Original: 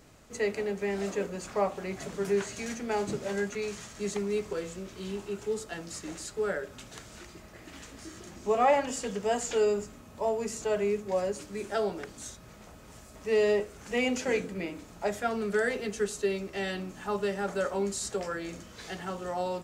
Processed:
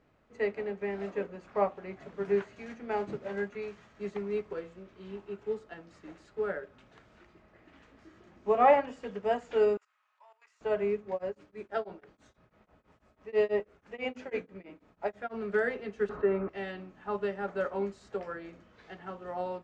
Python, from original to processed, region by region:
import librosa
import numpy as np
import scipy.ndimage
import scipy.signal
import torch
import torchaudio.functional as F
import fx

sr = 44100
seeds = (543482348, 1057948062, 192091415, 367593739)

y = fx.chain(x, sr, fx.highpass(hz=1100.0, slope=24),
    fx.level_steps(step_db=16), at=(9.77, 10.61))
y = fx.chain(y, sr, fx.hum_notches(base_hz=50, count=5),
    fx.tremolo_abs(hz=6.1), at=(11.11, 15.34))
y = fx.chain(y, sr, fx.lowpass_res(hz=1300.0, q=2.3),
    fx.env_flatten(amount_pct=50), at=(16.09, 16.49))
y = scipy.signal.sosfilt(scipy.signal.butter(2, 2300.0, 'lowpass', fs=sr, output='sos'), y)
y = fx.low_shelf(y, sr, hz=190.0, db=-4.5)
y = fx.upward_expand(y, sr, threshold_db=-44.0, expansion=1.5)
y = F.gain(torch.from_numpy(y), 3.0).numpy()